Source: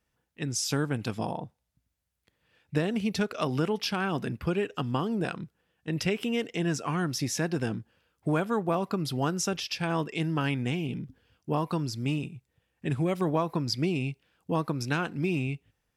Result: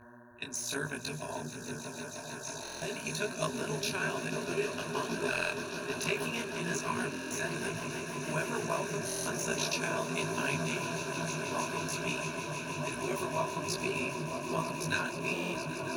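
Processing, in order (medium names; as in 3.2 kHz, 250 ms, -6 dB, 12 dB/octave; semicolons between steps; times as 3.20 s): AM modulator 59 Hz, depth 70%; RIAA curve recording; mains buzz 120 Hz, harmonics 15, -47 dBFS -3 dB/octave; rippled EQ curve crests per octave 1.5, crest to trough 14 dB; reverse; upward compressor, threshold -37 dBFS; reverse; gate -37 dBFS, range -7 dB; delay with an opening low-pass 313 ms, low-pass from 200 Hz, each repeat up 1 oct, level 0 dB; de-esser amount 50%; echo with a slow build-up 158 ms, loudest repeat 8, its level -14.5 dB; buffer glitch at 2.61/5.30/7.10/9.05/15.32 s, samples 1024, times 8; detune thickener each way 40 cents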